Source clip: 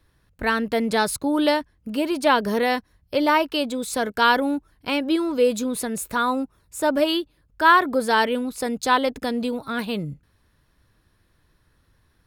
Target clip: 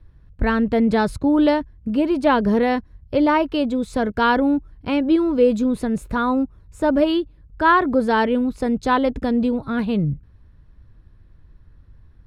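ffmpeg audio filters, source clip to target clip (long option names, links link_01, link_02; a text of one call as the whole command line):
ffmpeg -i in.wav -af "aemphasis=mode=reproduction:type=riaa" out.wav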